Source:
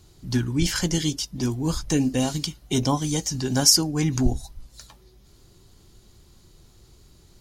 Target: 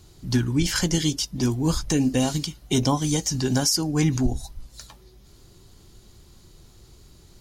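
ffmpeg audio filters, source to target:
-af "alimiter=limit=-14dB:level=0:latency=1:release=155,volume=2.5dB"

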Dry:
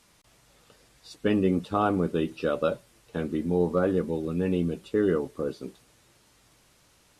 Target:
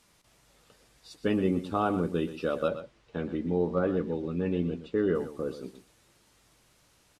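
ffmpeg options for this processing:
-filter_complex "[0:a]asettb=1/sr,asplit=3[a][b][c];[a]atrim=end=2.684[d];[b]atrim=start=2.68:end=5.15,asetpts=PTS-STARTPTS,afade=t=in:d=0.004:c=qsin,afade=t=out:st=2.466:d=0.004:c=qsin,lowpass=4.3k[e];[c]atrim=start=5.146[f];[d][e]acrossfade=d=0.004:c1=hsin:c2=qsin[g];[g][f]acrossfade=d=0.004:c1=qsin:c2=hsin,aecho=1:1:121:0.251,volume=-3dB"

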